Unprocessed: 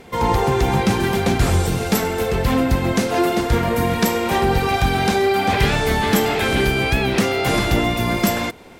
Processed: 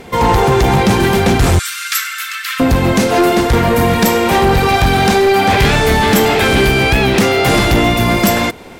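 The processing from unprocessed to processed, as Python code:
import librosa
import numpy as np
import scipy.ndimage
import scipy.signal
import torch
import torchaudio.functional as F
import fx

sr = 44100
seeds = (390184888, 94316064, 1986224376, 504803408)

p1 = fx.steep_highpass(x, sr, hz=1200.0, slope=96, at=(1.59, 2.6))
p2 = 10.0 ** (-15.5 / 20.0) * (np.abs((p1 / 10.0 ** (-15.5 / 20.0) + 3.0) % 4.0 - 2.0) - 1.0)
p3 = p1 + (p2 * 10.0 ** (-3.0 / 20.0))
y = p3 * 10.0 ** (3.5 / 20.0)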